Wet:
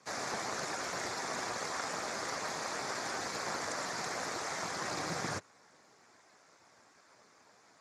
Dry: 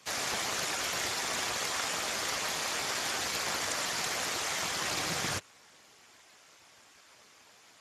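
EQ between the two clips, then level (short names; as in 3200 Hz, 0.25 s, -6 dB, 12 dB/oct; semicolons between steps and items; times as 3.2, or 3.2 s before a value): HPF 110 Hz 12 dB/oct; air absorption 75 m; bell 3000 Hz -14.5 dB 0.74 oct; 0.0 dB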